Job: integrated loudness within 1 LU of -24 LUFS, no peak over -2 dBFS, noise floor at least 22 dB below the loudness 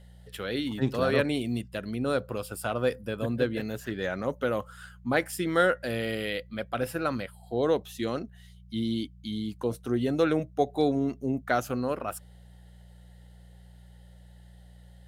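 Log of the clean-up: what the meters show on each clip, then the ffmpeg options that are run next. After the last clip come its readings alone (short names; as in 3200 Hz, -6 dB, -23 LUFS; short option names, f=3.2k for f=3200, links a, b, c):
hum 60 Hz; harmonics up to 180 Hz; hum level -49 dBFS; loudness -29.5 LUFS; peak -11.0 dBFS; loudness target -24.0 LUFS
-> -af "bandreject=f=60:t=h:w=4,bandreject=f=120:t=h:w=4,bandreject=f=180:t=h:w=4"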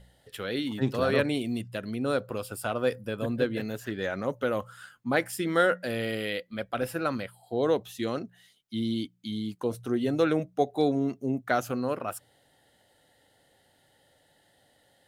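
hum none; loudness -30.0 LUFS; peak -11.0 dBFS; loudness target -24.0 LUFS
-> -af "volume=6dB"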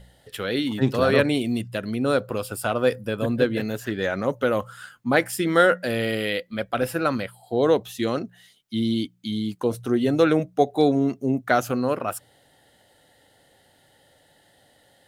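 loudness -24.0 LUFS; peak -5.0 dBFS; noise floor -60 dBFS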